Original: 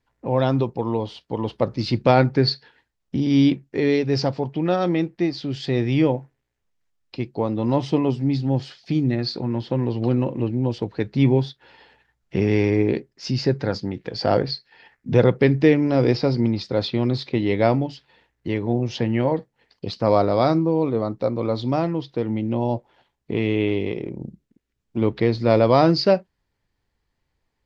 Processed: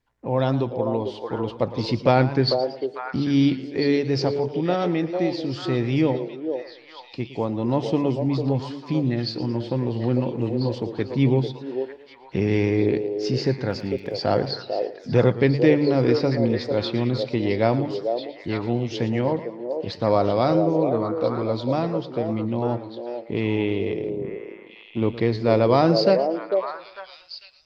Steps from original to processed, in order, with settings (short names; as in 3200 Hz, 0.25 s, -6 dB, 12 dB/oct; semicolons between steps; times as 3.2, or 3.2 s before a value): delay with a stepping band-pass 0.448 s, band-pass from 500 Hz, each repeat 1.4 oct, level -2.5 dB; 13.69–14.29 crackle 36/s -39 dBFS; warbling echo 0.113 s, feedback 41%, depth 127 cents, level -15 dB; gain -2 dB